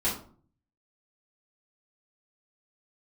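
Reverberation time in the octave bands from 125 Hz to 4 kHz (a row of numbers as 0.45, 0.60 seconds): 0.85, 0.65, 0.50, 0.45, 0.35, 0.30 seconds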